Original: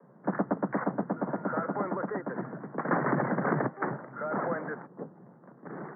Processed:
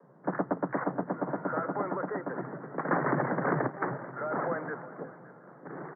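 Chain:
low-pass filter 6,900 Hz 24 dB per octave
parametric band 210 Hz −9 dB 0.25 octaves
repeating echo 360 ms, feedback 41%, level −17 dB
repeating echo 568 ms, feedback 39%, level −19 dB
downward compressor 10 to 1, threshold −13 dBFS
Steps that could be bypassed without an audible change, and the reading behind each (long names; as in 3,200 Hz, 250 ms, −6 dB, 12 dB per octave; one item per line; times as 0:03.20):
low-pass filter 6,900 Hz: nothing at its input above 2,200 Hz
downward compressor, threshold −13 dBFS: peak of its input −15.0 dBFS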